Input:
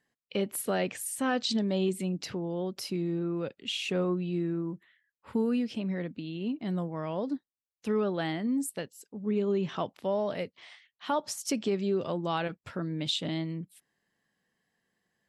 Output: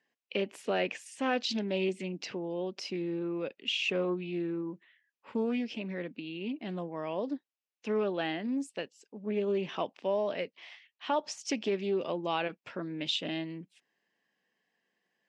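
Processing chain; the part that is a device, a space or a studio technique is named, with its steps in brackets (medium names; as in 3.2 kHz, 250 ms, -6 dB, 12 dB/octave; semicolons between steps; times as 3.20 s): full-range speaker at full volume (loudspeaker Doppler distortion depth 0.16 ms; cabinet simulation 270–6200 Hz, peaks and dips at 1.3 kHz -4 dB, 2.6 kHz +6 dB, 4.1 kHz -4 dB)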